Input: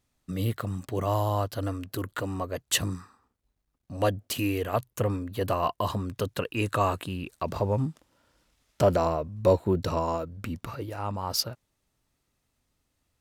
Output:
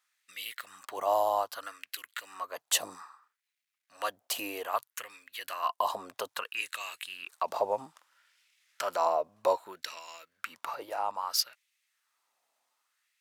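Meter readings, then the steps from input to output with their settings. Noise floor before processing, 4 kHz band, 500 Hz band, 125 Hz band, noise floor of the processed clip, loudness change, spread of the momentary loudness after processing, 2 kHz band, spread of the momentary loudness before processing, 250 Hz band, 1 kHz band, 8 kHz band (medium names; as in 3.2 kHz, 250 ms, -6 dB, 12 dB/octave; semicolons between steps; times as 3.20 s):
-78 dBFS, -1.0 dB, -6.0 dB, under -35 dB, under -85 dBFS, -4.5 dB, 14 LU, -1.0 dB, 10 LU, -19.5 dB, -0.5 dB, -0.5 dB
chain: dynamic bell 1.6 kHz, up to -7 dB, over -40 dBFS, Q 0.71; LFO high-pass sine 0.62 Hz 710–2300 Hz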